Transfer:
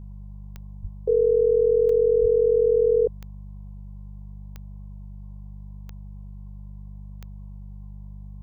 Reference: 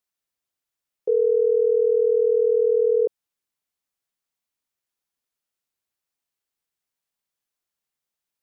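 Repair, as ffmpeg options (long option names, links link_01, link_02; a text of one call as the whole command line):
ffmpeg -i in.wav -filter_complex "[0:a]adeclick=threshold=4,bandreject=frequency=49.6:width_type=h:width=4,bandreject=frequency=99.2:width_type=h:width=4,bandreject=frequency=148.8:width_type=h:width=4,bandreject=frequency=198.4:width_type=h:width=4,asplit=3[link_01][link_02][link_03];[link_01]afade=type=out:start_time=0.81:duration=0.02[link_04];[link_02]highpass=frequency=140:width=0.5412,highpass=frequency=140:width=1.3066,afade=type=in:start_time=0.81:duration=0.02,afade=type=out:start_time=0.93:duration=0.02[link_05];[link_03]afade=type=in:start_time=0.93:duration=0.02[link_06];[link_04][link_05][link_06]amix=inputs=3:normalize=0,asplit=3[link_07][link_08][link_09];[link_07]afade=type=out:start_time=2.21:duration=0.02[link_10];[link_08]highpass=frequency=140:width=0.5412,highpass=frequency=140:width=1.3066,afade=type=in:start_time=2.21:duration=0.02,afade=type=out:start_time=2.33:duration=0.02[link_11];[link_09]afade=type=in:start_time=2.33:duration=0.02[link_12];[link_10][link_11][link_12]amix=inputs=3:normalize=0,afftdn=noise_reduction=30:noise_floor=-39" out.wav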